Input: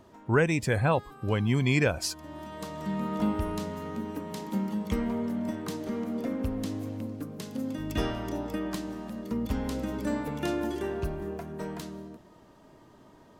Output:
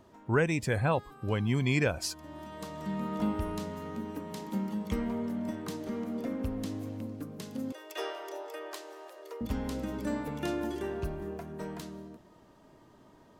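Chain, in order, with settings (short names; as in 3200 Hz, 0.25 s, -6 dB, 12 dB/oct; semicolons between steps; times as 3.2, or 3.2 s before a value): 7.72–9.41 steep high-pass 350 Hz 96 dB/oct; gain -3 dB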